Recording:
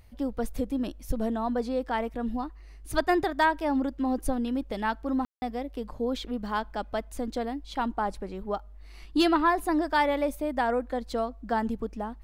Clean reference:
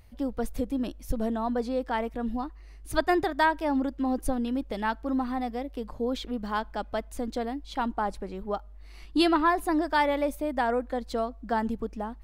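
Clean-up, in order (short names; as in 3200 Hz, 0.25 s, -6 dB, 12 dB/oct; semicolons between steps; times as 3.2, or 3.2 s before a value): clip repair -13.5 dBFS; room tone fill 5.25–5.42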